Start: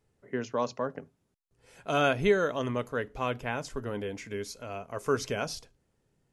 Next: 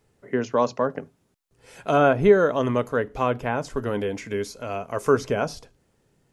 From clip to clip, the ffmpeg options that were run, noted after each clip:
-filter_complex "[0:a]lowshelf=f=110:g=-4.5,acrossover=split=1500[s0][s1];[s1]acompressor=threshold=0.00447:ratio=6[s2];[s0][s2]amix=inputs=2:normalize=0,volume=2.82"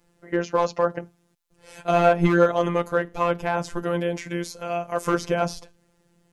-filter_complex "[0:a]asplit=2[s0][s1];[s1]aeval=exprs='0.2*(abs(mod(val(0)/0.2+3,4)-2)-1)':c=same,volume=0.398[s2];[s0][s2]amix=inputs=2:normalize=0,afftfilt=real='hypot(re,im)*cos(PI*b)':imag='0':win_size=1024:overlap=0.75,volume=1.33"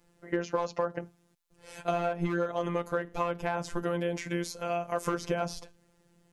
-af "acompressor=threshold=0.0708:ratio=10,volume=0.794"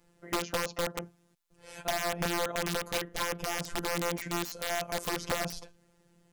-af "aeval=exprs='(mod(13.3*val(0)+1,2)-1)/13.3':c=same"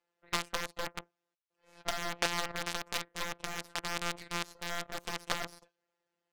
-af "highpass=530,lowpass=5100,aeval=exprs='0.126*(cos(1*acos(clip(val(0)/0.126,-1,1)))-cos(1*PI/2))+0.0398*(cos(3*acos(clip(val(0)/0.126,-1,1)))-cos(3*PI/2))+0.00112*(cos(5*acos(clip(val(0)/0.126,-1,1)))-cos(5*PI/2))+0.00562*(cos(8*acos(clip(val(0)/0.126,-1,1)))-cos(8*PI/2))':c=same,volume=2.37"

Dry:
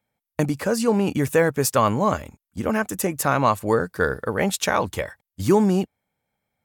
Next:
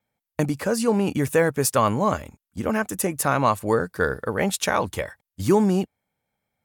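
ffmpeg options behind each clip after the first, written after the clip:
-af "adynamicequalizer=threshold=0.00355:dfrequency=9700:dqfactor=7.8:tfrequency=9700:tqfactor=7.8:attack=5:release=100:ratio=0.375:range=3.5:mode=boostabove:tftype=bell,volume=0.891"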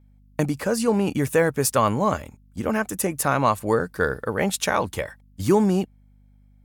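-af "aeval=exprs='val(0)+0.00224*(sin(2*PI*50*n/s)+sin(2*PI*2*50*n/s)/2+sin(2*PI*3*50*n/s)/3+sin(2*PI*4*50*n/s)/4+sin(2*PI*5*50*n/s)/5)':c=same"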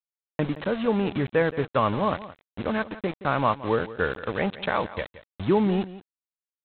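-af "aresample=8000,aeval=exprs='val(0)*gte(abs(val(0)),0.0376)':c=same,aresample=44100,aecho=1:1:172:0.158,volume=0.708"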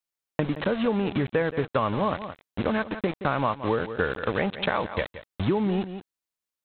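-af "acompressor=threshold=0.0447:ratio=5,volume=1.88"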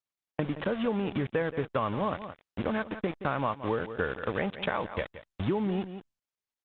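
-af "aresample=8000,aresample=44100,volume=0.596" -ar 48000 -c:a libopus -b:a 32k

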